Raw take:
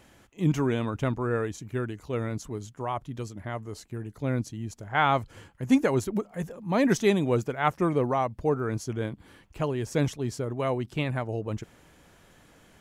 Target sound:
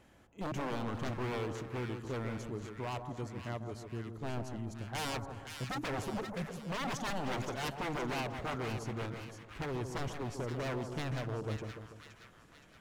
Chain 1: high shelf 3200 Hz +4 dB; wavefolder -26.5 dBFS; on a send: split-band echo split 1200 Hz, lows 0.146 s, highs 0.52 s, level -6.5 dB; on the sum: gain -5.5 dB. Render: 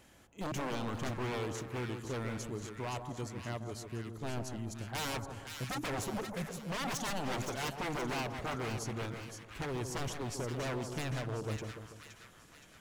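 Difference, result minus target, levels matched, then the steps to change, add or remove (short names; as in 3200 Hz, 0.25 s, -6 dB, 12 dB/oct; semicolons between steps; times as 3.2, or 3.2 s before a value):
8000 Hz band +5.5 dB
change: high shelf 3200 Hz -6.5 dB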